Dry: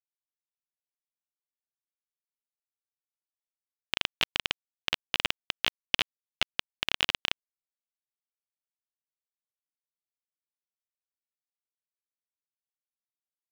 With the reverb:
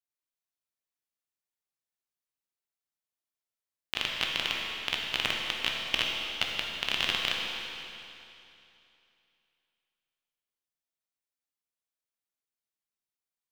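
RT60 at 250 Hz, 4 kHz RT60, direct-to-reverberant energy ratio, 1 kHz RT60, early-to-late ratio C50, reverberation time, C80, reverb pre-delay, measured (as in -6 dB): 2.8 s, 2.7 s, -1.5 dB, 2.8 s, 0.0 dB, 2.8 s, 1.0 dB, 14 ms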